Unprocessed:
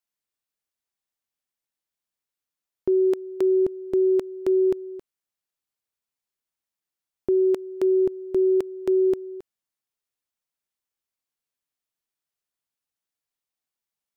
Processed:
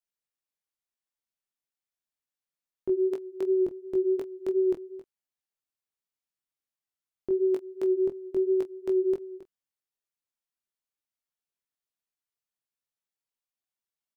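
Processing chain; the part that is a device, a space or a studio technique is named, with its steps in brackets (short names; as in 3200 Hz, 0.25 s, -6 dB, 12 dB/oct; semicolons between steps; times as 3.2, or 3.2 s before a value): double-tracked vocal (doubler 26 ms -12 dB; chorus 2.8 Hz, delay 18 ms, depth 2.9 ms); gain -3.5 dB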